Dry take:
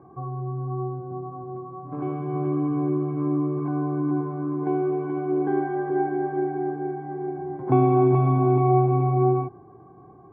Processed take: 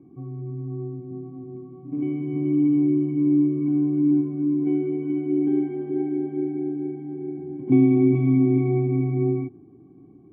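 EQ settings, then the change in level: vocal tract filter i; high shelf 2000 Hz +8.5 dB; +9.0 dB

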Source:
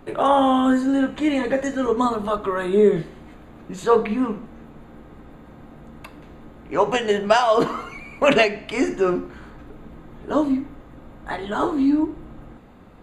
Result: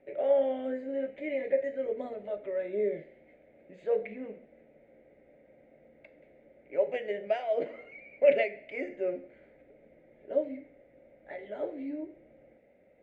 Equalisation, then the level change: double band-pass 1100 Hz, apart 1.9 oct; tilt -2.5 dB/oct; -4.0 dB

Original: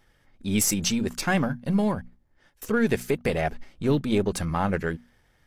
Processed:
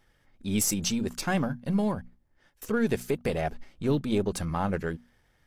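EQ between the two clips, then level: dynamic EQ 2000 Hz, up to -4 dB, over -42 dBFS, Q 1.6; -3.0 dB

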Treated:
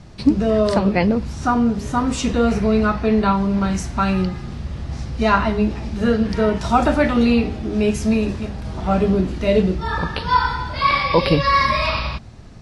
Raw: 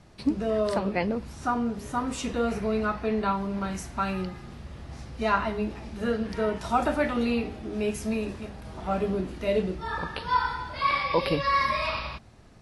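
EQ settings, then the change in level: air absorption 79 m; tone controls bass +6 dB, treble +8 dB; +8.0 dB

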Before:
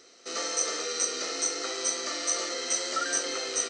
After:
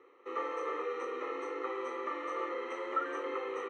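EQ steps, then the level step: HPF 140 Hz 12 dB/oct; synth low-pass 1300 Hz, resonance Q 2; fixed phaser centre 1000 Hz, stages 8; 0.0 dB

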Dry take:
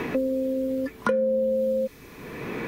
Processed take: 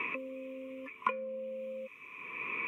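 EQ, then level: double band-pass 1600 Hz, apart 1.2 oct; fixed phaser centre 1900 Hz, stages 4; +9.0 dB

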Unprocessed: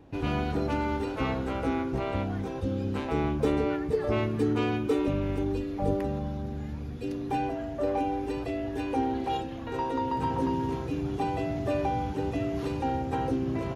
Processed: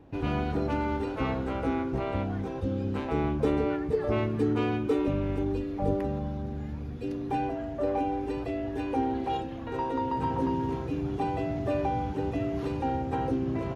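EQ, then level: high shelf 3600 Hz -7 dB; 0.0 dB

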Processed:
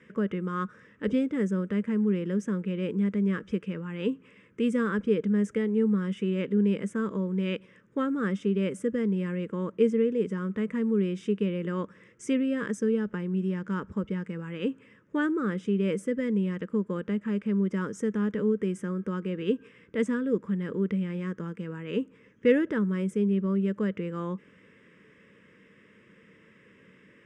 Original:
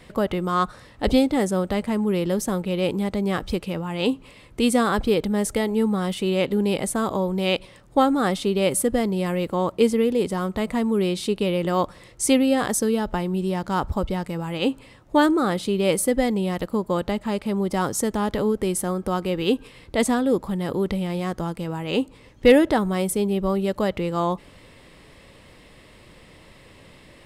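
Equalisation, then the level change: dynamic EQ 2000 Hz, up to -3 dB, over -33 dBFS, Q 0.73; speaker cabinet 160–6400 Hz, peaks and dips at 200 Hz +9 dB, 450 Hz +9 dB, 1600 Hz +6 dB; fixed phaser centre 1800 Hz, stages 4; -7.0 dB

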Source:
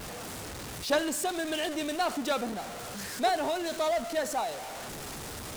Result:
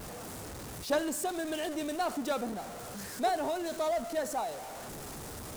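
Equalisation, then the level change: bell 3000 Hz -6 dB 2.2 oct; -1.5 dB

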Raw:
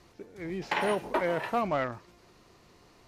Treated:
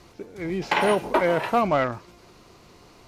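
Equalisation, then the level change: notch 1800 Hz, Q 13; +7.5 dB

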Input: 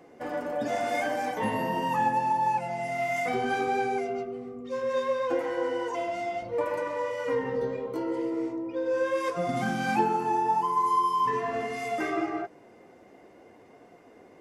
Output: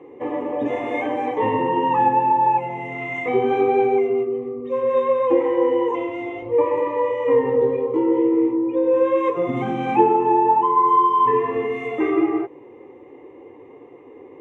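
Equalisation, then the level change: BPF 180–4900 Hz; tilt -3.5 dB/oct; fixed phaser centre 990 Hz, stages 8; +9.0 dB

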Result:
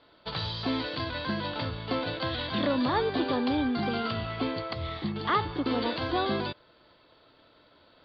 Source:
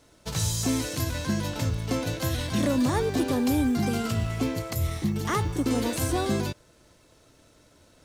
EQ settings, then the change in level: rippled Chebyshev low-pass 4700 Hz, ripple 6 dB; low shelf 180 Hz -11.5 dB; bell 1400 Hz -2 dB; +5.5 dB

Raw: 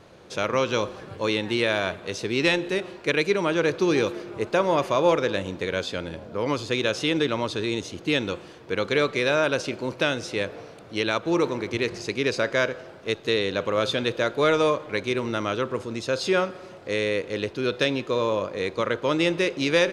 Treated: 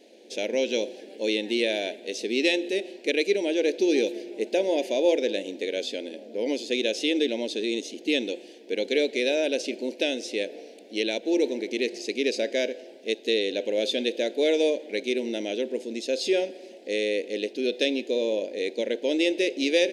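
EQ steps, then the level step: brick-wall FIR high-pass 210 Hz; Butterworth band-stop 1200 Hz, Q 0.76; 0.0 dB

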